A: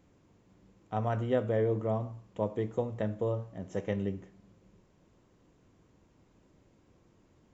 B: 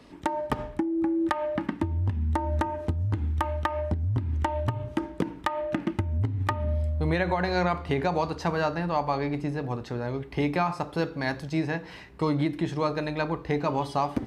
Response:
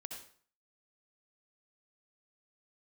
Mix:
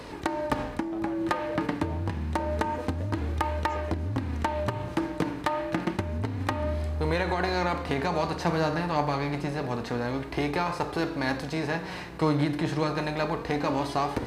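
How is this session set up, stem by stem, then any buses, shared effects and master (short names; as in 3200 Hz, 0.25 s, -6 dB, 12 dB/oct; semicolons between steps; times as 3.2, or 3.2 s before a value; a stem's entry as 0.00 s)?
+0.5 dB, 0.00 s, no send, HPF 130 Hz; compressor, threshold -36 dBFS, peak gain reduction 13 dB
0.0 dB, 0.00 s, no send, per-bin compression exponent 0.6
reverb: off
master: high shelf 4400 Hz +5 dB; flange 0.28 Hz, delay 1.9 ms, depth 5.1 ms, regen +49%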